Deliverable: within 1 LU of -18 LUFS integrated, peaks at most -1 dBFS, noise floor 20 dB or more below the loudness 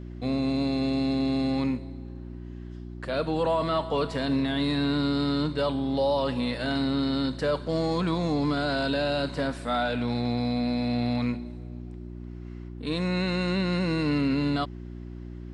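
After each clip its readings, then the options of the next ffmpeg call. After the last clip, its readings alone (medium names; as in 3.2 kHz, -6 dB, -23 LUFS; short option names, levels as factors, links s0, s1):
hum 60 Hz; highest harmonic 360 Hz; hum level -36 dBFS; loudness -27.0 LUFS; peak level -16.0 dBFS; loudness target -18.0 LUFS
-> -af "bandreject=f=60:t=h:w=4,bandreject=f=120:t=h:w=4,bandreject=f=180:t=h:w=4,bandreject=f=240:t=h:w=4,bandreject=f=300:t=h:w=4,bandreject=f=360:t=h:w=4"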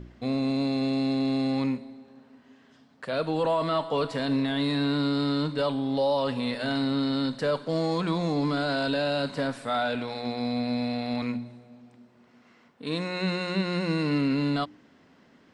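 hum not found; loudness -27.5 LUFS; peak level -16.0 dBFS; loudness target -18.0 LUFS
-> -af "volume=2.99"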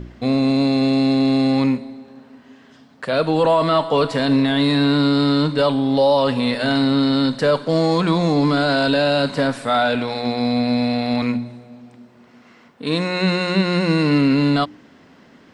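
loudness -18.0 LUFS; peak level -6.5 dBFS; noise floor -49 dBFS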